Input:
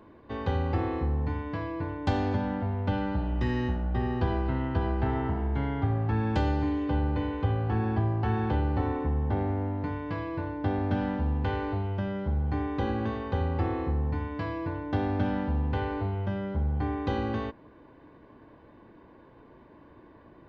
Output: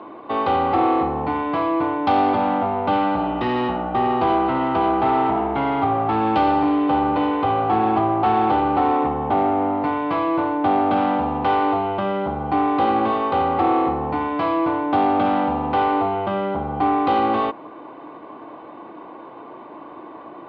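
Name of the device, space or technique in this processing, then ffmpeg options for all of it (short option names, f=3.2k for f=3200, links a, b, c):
overdrive pedal into a guitar cabinet: -filter_complex "[0:a]asplit=2[a][b];[b]highpass=f=720:p=1,volume=23dB,asoftclip=type=tanh:threshold=-13.5dB[c];[a][c]amix=inputs=2:normalize=0,lowpass=f=3.7k:p=1,volume=-6dB,highpass=100,equalizer=f=100:t=q:w=4:g=-4,equalizer=f=320:t=q:w=4:g=6,equalizer=f=740:t=q:w=4:g=9,equalizer=f=1.2k:t=q:w=4:g=7,equalizer=f=1.7k:t=q:w=4:g=-10,lowpass=f=4k:w=0.5412,lowpass=f=4k:w=1.3066"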